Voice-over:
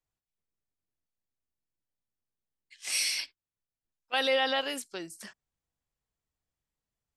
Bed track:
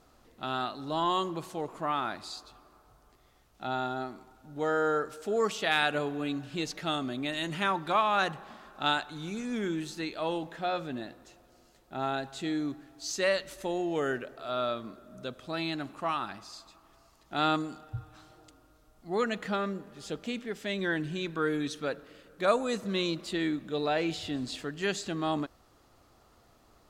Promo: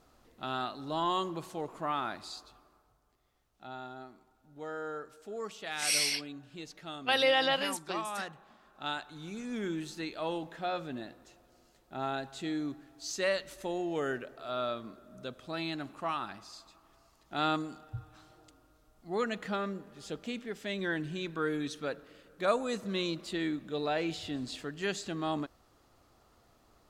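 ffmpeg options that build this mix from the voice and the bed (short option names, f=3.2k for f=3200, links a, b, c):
-filter_complex "[0:a]adelay=2950,volume=0.5dB[a];[1:a]volume=6dB,afade=t=out:st=2.37:d=0.63:silence=0.354813,afade=t=in:st=8.61:d=1.09:silence=0.375837[b];[a][b]amix=inputs=2:normalize=0"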